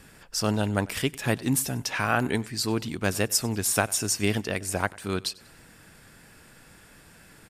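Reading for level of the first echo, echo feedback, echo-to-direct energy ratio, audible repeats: -23.0 dB, 39%, -22.5 dB, 2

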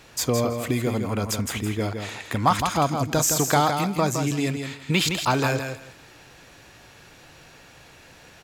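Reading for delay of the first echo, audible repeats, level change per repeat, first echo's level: 0.164 s, 2, -14.5 dB, -6.5 dB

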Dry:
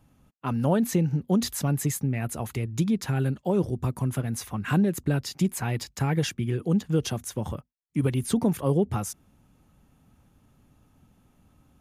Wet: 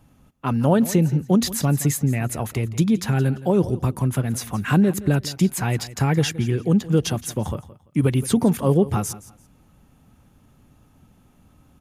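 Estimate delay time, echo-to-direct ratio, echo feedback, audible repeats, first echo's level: 0.17 s, -17.0 dB, 24%, 2, -17.0 dB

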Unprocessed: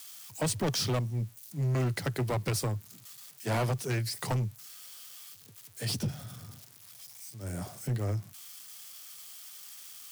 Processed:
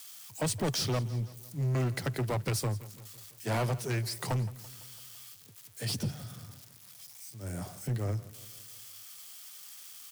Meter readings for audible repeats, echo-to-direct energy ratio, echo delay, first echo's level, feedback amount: 4, -17.0 dB, 0.168 s, -18.5 dB, 55%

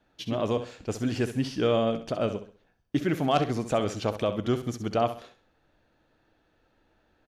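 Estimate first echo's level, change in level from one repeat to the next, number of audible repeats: -11.0 dB, -9.5 dB, 3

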